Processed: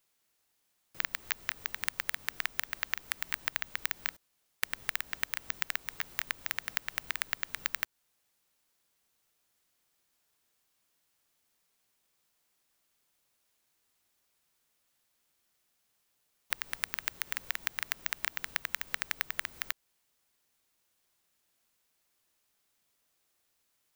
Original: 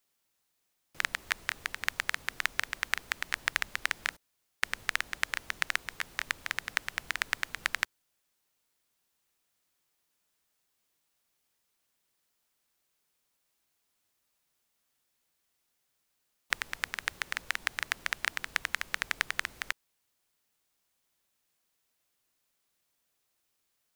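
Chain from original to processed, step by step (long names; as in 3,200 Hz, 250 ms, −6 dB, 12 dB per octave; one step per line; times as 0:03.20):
downward compressor 2.5 to 1, threshold −31 dBFS, peak gain reduction 7 dB
bad sample-rate conversion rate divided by 2×, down none, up zero stuff
level −1 dB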